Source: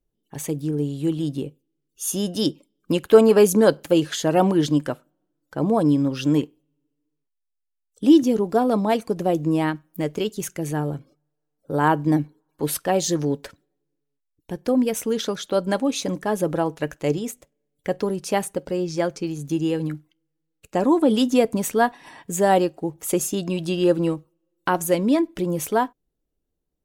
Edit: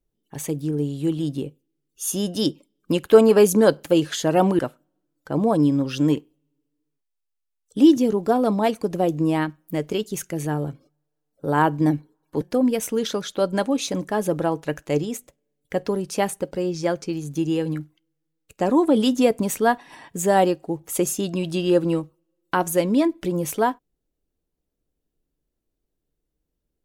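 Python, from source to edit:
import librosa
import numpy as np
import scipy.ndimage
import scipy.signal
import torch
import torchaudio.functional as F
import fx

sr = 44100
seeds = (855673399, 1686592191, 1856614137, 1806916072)

y = fx.edit(x, sr, fx.cut(start_s=4.59, length_s=0.26),
    fx.cut(start_s=12.67, length_s=1.88), tone=tone)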